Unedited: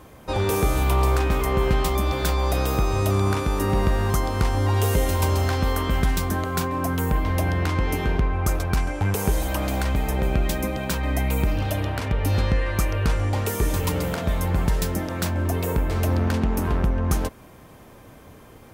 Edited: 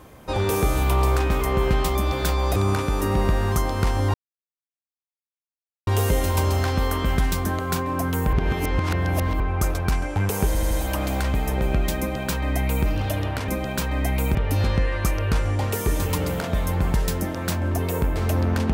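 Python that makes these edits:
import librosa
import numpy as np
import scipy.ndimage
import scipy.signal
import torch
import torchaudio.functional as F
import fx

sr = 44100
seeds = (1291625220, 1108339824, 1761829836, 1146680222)

y = fx.edit(x, sr, fx.cut(start_s=2.56, length_s=0.58),
    fx.insert_silence(at_s=4.72, length_s=1.73),
    fx.reverse_span(start_s=7.18, length_s=1.07),
    fx.stutter(start_s=9.32, slice_s=0.08, count=4),
    fx.duplicate(start_s=10.6, length_s=0.87, to_s=12.09), tone=tone)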